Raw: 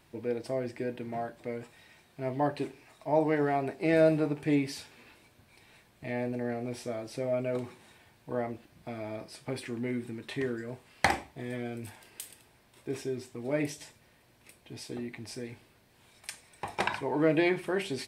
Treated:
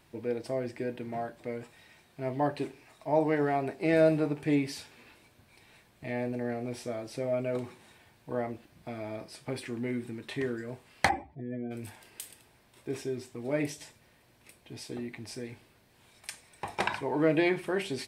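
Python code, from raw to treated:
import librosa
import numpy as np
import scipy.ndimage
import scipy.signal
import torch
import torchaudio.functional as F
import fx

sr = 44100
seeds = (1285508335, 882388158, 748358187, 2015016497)

y = fx.spec_expand(x, sr, power=2.0, at=(11.08, 11.7), fade=0.02)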